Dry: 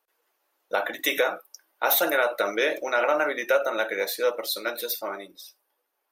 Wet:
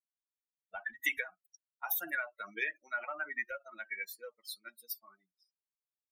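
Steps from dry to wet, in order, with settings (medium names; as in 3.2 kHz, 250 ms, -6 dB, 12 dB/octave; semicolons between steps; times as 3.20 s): expander on every frequency bin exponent 3; peaking EQ 260 Hz +4.5 dB 0.53 oct; compression, threshold -28 dBFS, peak gain reduction 8.5 dB; graphic EQ 125/250/500/1000/2000/4000/8000 Hz -5/-9/-12/-9/+9/-11/-5 dB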